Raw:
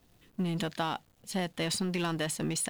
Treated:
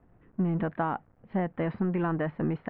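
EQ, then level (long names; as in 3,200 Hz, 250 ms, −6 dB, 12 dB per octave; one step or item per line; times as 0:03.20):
low-pass filter 1,800 Hz 24 dB per octave
high-frequency loss of the air 280 metres
+4.5 dB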